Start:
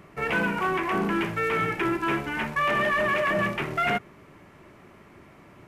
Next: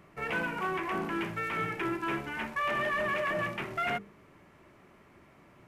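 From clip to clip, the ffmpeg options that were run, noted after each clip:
-af "bandreject=f=50:t=h:w=6,bandreject=f=100:t=h:w=6,bandreject=f=150:t=h:w=6,bandreject=f=200:t=h:w=6,bandreject=f=250:t=h:w=6,bandreject=f=300:t=h:w=6,bandreject=f=350:t=h:w=6,bandreject=f=400:t=h:w=6,bandreject=f=450:t=h:w=6,volume=-6.5dB"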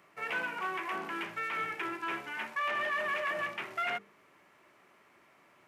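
-filter_complex "[0:a]highpass=f=850:p=1,acrossover=split=6500[a][b];[b]alimiter=level_in=26dB:limit=-24dB:level=0:latency=1:release=236,volume=-26dB[c];[a][c]amix=inputs=2:normalize=0"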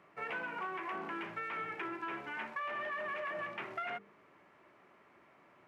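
-af "lowpass=f=1.6k:p=1,acompressor=threshold=-38dB:ratio=6,volume=1.5dB"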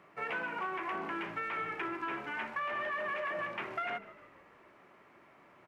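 -filter_complex "[0:a]asplit=6[a][b][c][d][e][f];[b]adelay=149,afreqshift=-57,volume=-17.5dB[g];[c]adelay=298,afreqshift=-114,volume=-22.2dB[h];[d]adelay=447,afreqshift=-171,volume=-27dB[i];[e]adelay=596,afreqshift=-228,volume=-31.7dB[j];[f]adelay=745,afreqshift=-285,volume=-36.4dB[k];[a][g][h][i][j][k]amix=inputs=6:normalize=0,volume=3dB"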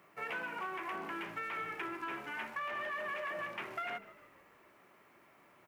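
-af "aemphasis=mode=production:type=50fm,volume=-3.5dB"

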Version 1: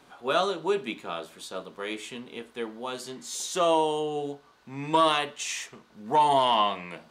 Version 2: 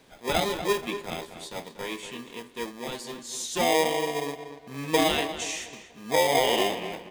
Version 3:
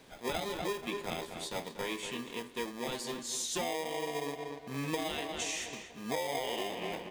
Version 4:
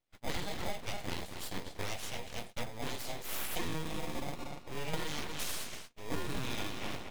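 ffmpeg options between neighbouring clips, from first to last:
-filter_complex "[0:a]acrossover=split=1400[a][b];[a]acrusher=samples=31:mix=1:aa=0.000001[c];[c][b]amix=inputs=2:normalize=0,asplit=2[d][e];[e]adelay=239,lowpass=f=3.2k:p=1,volume=-10dB,asplit=2[f][g];[g]adelay=239,lowpass=f=3.2k:p=1,volume=0.34,asplit=2[h][i];[i]adelay=239,lowpass=f=3.2k:p=1,volume=0.34,asplit=2[j][k];[k]adelay=239,lowpass=f=3.2k:p=1,volume=0.34[l];[d][f][h][j][l]amix=inputs=5:normalize=0"
-af "acompressor=threshold=-32dB:ratio=12"
-af "agate=range=-30dB:threshold=-47dB:ratio=16:detection=peak,aeval=exprs='abs(val(0))':c=same,volume=1.5dB"

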